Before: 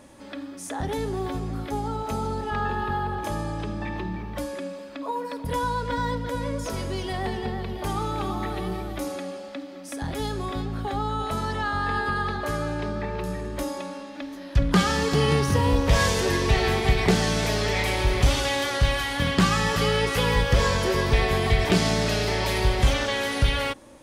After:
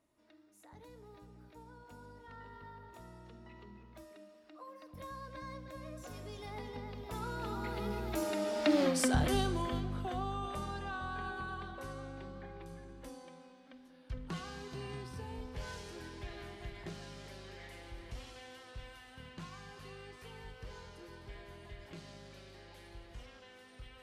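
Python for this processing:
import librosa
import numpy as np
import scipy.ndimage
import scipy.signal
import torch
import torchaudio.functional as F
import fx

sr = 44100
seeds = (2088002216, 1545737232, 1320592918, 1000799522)

y = fx.doppler_pass(x, sr, speed_mps=32, closest_m=3.1, pass_at_s=8.82)
y = y * librosa.db_to_amplitude(12.5)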